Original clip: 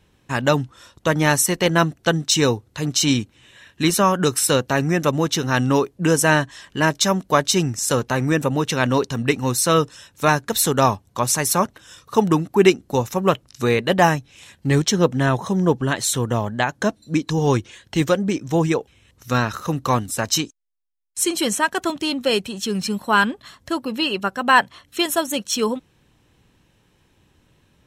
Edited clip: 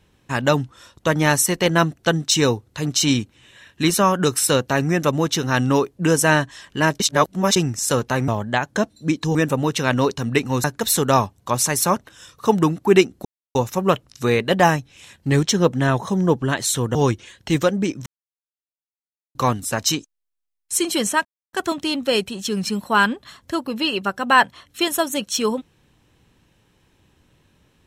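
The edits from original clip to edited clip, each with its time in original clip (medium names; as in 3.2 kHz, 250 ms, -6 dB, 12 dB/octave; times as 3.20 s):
7.00–7.56 s: reverse
9.57–10.33 s: delete
12.94 s: insert silence 0.30 s
16.34–17.41 s: move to 8.28 s
18.52–19.81 s: mute
21.71 s: insert silence 0.28 s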